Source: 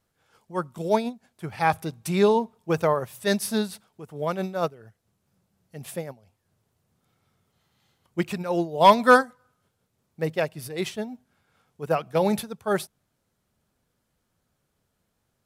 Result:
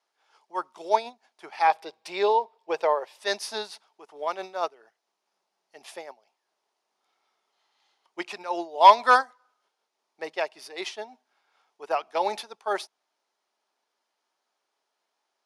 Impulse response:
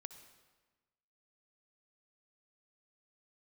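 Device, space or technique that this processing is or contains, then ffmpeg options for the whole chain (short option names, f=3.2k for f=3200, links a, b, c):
phone speaker on a table: -filter_complex "[0:a]asettb=1/sr,asplit=3[a][b][c];[a]atrim=end=1.674[d];[b]atrim=start=1.67:end=3.19,asetpts=PTS-STARTPTS,afade=t=in:d=0.004:c=qsin,afade=t=out:st=1.516:d=0.004:c=qsin,equalizer=f=250:t=o:w=0.33:g=-10,equalizer=f=500:t=o:w=0.33:g=8,equalizer=f=1.25k:t=o:w=0.33:g=-6,equalizer=f=6.3k:t=o:w=0.33:g=-8,equalizer=f=10k:t=o:w=0.33:g=-10[e];[c]atrim=start=3.186[f];[d][e]acrossfade=d=0.004:c1=hsin:c2=qsin[g];[g][f]acrossfade=d=0.004:c1=qsin:c2=hsin,highpass=f=420:w=0.5412,highpass=f=420:w=1.3066,equalizer=f=500:t=q:w=4:g=-9,equalizer=f=890:t=q:w=4:g=5,equalizer=f=1.5k:t=q:w=4:g=-3,equalizer=f=5k:t=q:w=4:g=3,equalizer=f=7.9k:t=q:w=4:g=-10,lowpass=f=8.7k:w=0.5412,lowpass=f=8.7k:w=1.3066"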